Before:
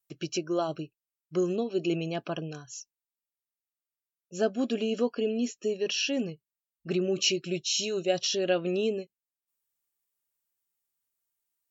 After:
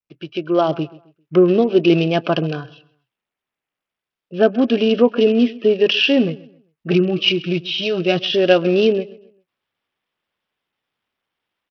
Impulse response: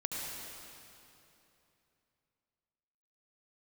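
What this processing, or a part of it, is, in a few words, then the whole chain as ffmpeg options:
Bluetooth headset: -filter_complex "[0:a]asettb=1/sr,asplit=3[s0][s1][s2];[s0]atrim=end=6.914[s3];[s1]atrim=start=6.91:end=8.23,asetpts=PTS-STARTPTS,afade=t=in:d=0.004:c=qsin,afade=t=out:st=1.316:d=0.004:c=qsin,aecho=1:1:6.3:0.71,atrim=end_sample=58212[s4];[s2]atrim=start=8.226[s5];[s3][s4]acrossfade=d=0.004:c1=hsin:c2=qsin[s6];[s6][s5]acrossfade=d=0.004:c1=qsin:c2=hsin,highpass=100,asplit=2[s7][s8];[s8]adelay=132,lowpass=f=4400:p=1,volume=0.0944,asplit=2[s9][s10];[s10]adelay=132,lowpass=f=4400:p=1,volume=0.33,asplit=2[s11][s12];[s12]adelay=132,lowpass=f=4400:p=1,volume=0.33[s13];[s7][s9][s11][s13]amix=inputs=4:normalize=0,dynaudnorm=f=180:g=5:m=6.68,aresample=8000,aresample=44100" -ar 44100 -c:a sbc -b:a 64k

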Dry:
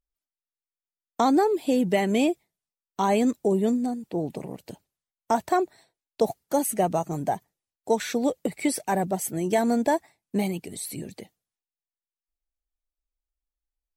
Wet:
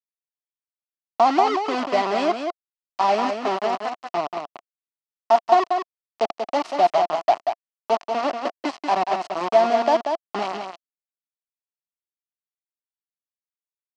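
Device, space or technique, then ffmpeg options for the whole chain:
hand-held game console: -filter_complex "[0:a]asettb=1/sr,asplit=3[s0][s1][s2];[s0]atrim=end=3.264[s3];[s1]atrim=start=3.26:end=3.87,asetpts=PTS-STARTPTS,afade=t=in:d=0.004:c=qsin,afade=t=out:st=0.606:d=0.004:c=qsin,highpass=f=280:p=1[s4];[s2]atrim=start=3.866[s5];[s3][s4]acrossfade=d=0.004:c1=hsin:c2=qsin[s6];[s6][s5]acrossfade=d=0.004:c1=qsin:c2=hsin,acrusher=bits=3:mix=0:aa=0.000001,highpass=400,equalizer=f=480:t=q:w=4:g=-10,equalizer=f=690:t=q:w=4:g=9,equalizer=f=1100:t=q:w=4:g=4,equalizer=f=1600:t=q:w=4:g=-8,equalizer=f=2300:t=q:w=4:g=-5,equalizer=f=3600:t=q:w=4:g=-9,lowpass=f=4400:w=0.5412,lowpass=f=4400:w=1.3066,aecho=1:1:186:0.501,volume=1.26"

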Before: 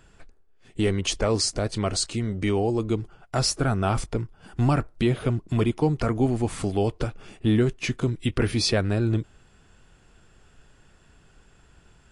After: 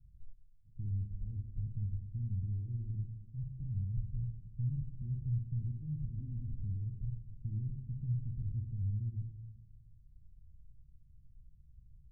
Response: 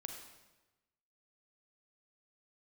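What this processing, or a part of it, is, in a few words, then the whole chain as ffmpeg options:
club heard from the street: -filter_complex "[0:a]alimiter=limit=0.0708:level=0:latency=1,lowpass=f=130:w=0.5412,lowpass=f=130:w=1.3066[s0];[1:a]atrim=start_sample=2205[s1];[s0][s1]afir=irnorm=-1:irlink=0,asettb=1/sr,asplit=3[s2][s3][s4];[s2]atrim=end=6.194[s5];[s3]atrim=start=6.19:end=6.62,asetpts=PTS-STARTPTS,afade=t=in:d=0.004:c=qsin,afade=t=out:st=0.426:d=0.004:c=qsin,aecho=1:1:3.9:0.39,atrim=end_sample=18963[s6];[s4]atrim=start=6.616[s7];[s5][s6]acrossfade=d=0.004:c1=hsin:c2=qsin[s8];[s8][s7]acrossfade=d=0.004:c1=qsin:c2=hsin,volume=1.26"

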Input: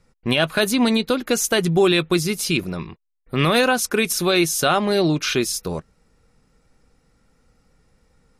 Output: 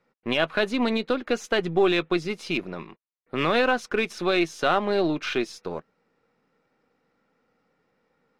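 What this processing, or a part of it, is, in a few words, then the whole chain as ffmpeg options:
crystal radio: -af "highpass=260,lowpass=2900,aeval=exprs='if(lt(val(0),0),0.708*val(0),val(0))':c=same,volume=0.794"

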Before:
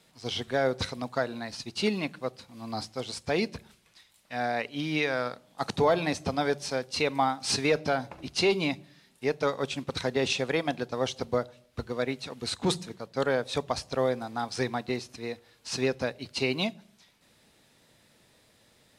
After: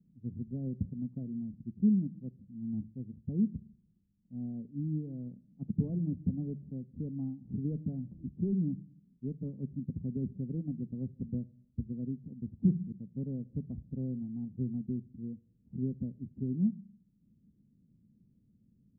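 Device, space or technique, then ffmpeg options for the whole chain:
the neighbour's flat through the wall: -af "lowpass=f=240:w=0.5412,lowpass=f=240:w=1.3066,equalizer=f=200:t=o:w=0.64:g=7"

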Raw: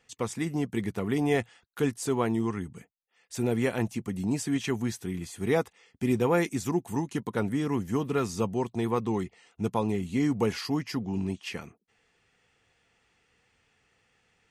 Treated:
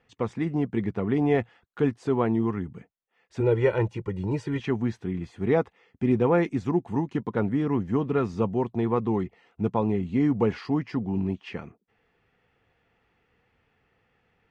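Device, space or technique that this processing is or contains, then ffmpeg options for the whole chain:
phone in a pocket: -filter_complex "[0:a]lowpass=3800,highshelf=f=2400:g=-11.5,asettb=1/sr,asplit=3[s0][s1][s2];[s0]atrim=end=3.404[s3];[s1]atrim=start=3.4:end=4.6,asetpts=PTS-STARTPTS,afade=t=in:d=0.004:c=qsin,afade=t=out:st=1.196:d=0.004:c=qsin,aecho=1:1:2.1:0.86,atrim=end_sample=52920[s4];[s2]atrim=start=4.596[s5];[s3][s4]acrossfade=d=0.004:c1=hsin:c2=qsin[s6];[s6][s5]acrossfade=d=0.004:c1=qsin:c2=hsin,volume=1.5"

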